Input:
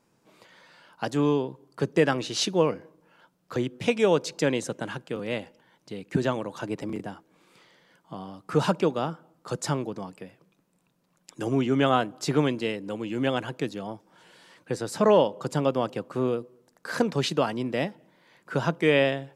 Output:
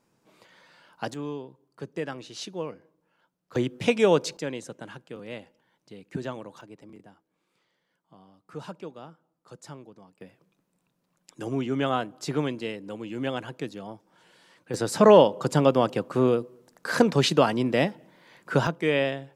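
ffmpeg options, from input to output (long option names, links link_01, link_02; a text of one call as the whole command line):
ffmpeg -i in.wav -af "asetnsamples=nb_out_samples=441:pad=0,asendcmd='1.14 volume volume -11dB;3.55 volume volume 1.5dB;4.37 volume volume -8dB;6.61 volume volume -15.5dB;10.21 volume volume -4dB;14.74 volume volume 4.5dB;18.67 volume volume -3dB',volume=-2dB" out.wav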